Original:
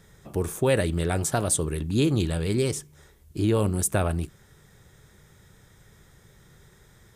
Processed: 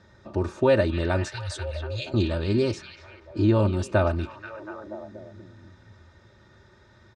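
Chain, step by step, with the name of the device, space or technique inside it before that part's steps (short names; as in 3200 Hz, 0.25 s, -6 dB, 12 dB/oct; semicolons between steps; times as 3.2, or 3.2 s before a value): 1.28–2.14 inverse Chebyshev band-stop 210–920 Hz, stop band 50 dB; guitar cabinet (speaker cabinet 88–4600 Hz, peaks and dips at 110 Hz +5 dB, 290 Hz -5 dB, 2100 Hz -7 dB, 3200 Hz -9 dB); comb 3.3 ms, depth 76%; delay with a stepping band-pass 0.241 s, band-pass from 3000 Hz, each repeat -0.7 oct, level -5.5 dB; gain +2 dB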